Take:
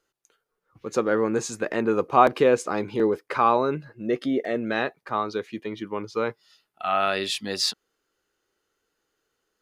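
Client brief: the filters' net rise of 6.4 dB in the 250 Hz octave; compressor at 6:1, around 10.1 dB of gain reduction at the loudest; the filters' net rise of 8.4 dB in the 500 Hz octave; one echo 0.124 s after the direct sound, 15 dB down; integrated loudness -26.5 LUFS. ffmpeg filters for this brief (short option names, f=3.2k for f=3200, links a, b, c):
-af "equalizer=f=250:t=o:g=5,equalizer=f=500:t=o:g=8.5,acompressor=threshold=-17dB:ratio=6,aecho=1:1:124:0.178,volume=-3dB"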